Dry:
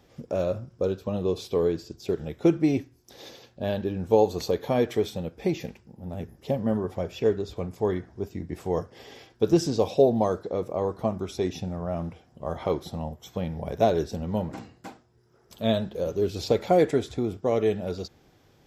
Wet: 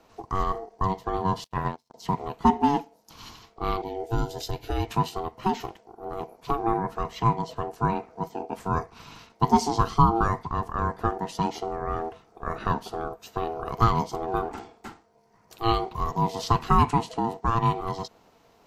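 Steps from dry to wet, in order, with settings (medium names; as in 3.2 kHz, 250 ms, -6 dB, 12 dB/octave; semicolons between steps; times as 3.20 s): 1.44–1.94 s: power-law waveshaper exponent 2; ring modulator 570 Hz; 3.82–4.91 s: static phaser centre 460 Hz, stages 4; trim +3.5 dB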